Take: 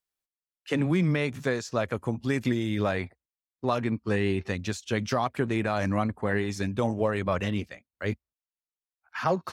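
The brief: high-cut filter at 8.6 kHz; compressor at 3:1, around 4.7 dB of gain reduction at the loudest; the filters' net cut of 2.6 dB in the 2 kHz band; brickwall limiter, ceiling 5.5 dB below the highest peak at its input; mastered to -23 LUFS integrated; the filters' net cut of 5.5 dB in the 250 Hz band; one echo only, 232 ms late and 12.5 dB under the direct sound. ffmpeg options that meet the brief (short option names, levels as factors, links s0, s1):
-af "lowpass=8600,equalizer=f=250:t=o:g=-7.5,equalizer=f=2000:t=o:g=-3,acompressor=threshold=0.0355:ratio=3,alimiter=limit=0.0708:level=0:latency=1,aecho=1:1:232:0.237,volume=4.22"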